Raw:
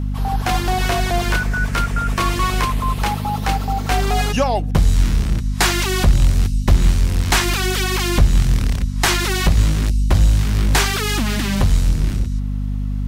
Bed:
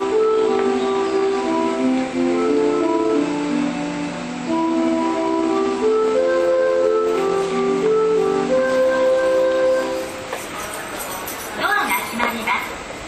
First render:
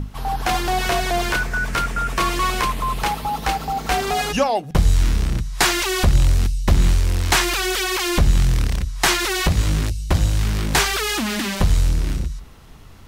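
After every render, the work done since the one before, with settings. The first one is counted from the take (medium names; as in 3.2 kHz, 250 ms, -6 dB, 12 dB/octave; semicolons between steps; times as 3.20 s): hum notches 50/100/150/200/250 Hz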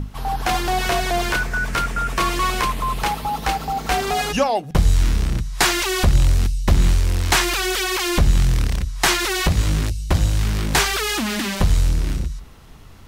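no audible change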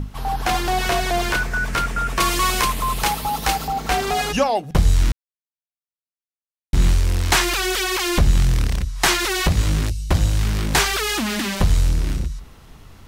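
2.20–3.68 s: treble shelf 4.3 kHz +9 dB; 5.12–6.73 s: mute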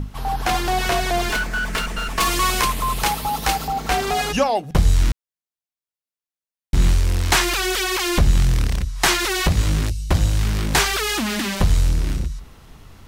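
1.29–2.28 s: comb filter that takes the minimum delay 4.6 ms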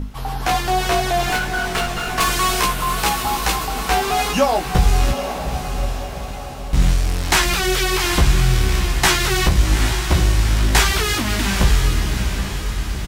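doubling 16 ms -4.5 dB; echo that smears into a reverb 816 ms, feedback 53%, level -7 dB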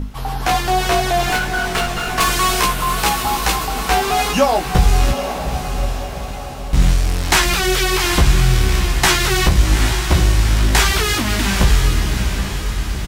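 trim +2 dB; peak limiter -2 dBFS, peak gain reduction 2.5 dB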